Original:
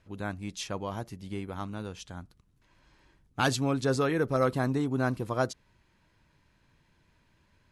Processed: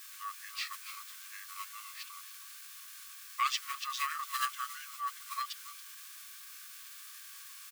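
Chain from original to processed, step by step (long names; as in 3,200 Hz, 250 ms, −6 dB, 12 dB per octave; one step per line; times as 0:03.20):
in parallel at −11.5 dB: bit-depth reduction 6 bits, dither triangular
on the sum: linear-phase brick-wall high-pass 1,100 Hz
single-tap delay 279 ms −15.5 dB
formants moved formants −5 semitones
level −2 dB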